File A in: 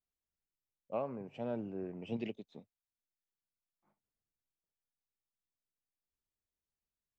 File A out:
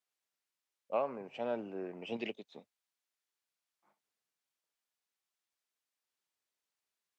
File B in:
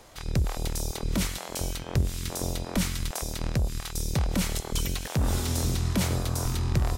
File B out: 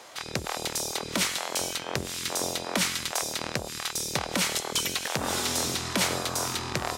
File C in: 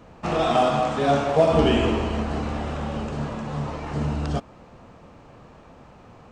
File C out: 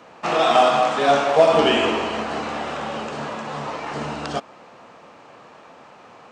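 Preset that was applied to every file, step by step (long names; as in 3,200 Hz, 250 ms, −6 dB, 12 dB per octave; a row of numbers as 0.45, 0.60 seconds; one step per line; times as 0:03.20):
meter weighting curve A
level +6 dB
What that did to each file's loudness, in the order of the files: +2.0, +1.0, +3.0 LU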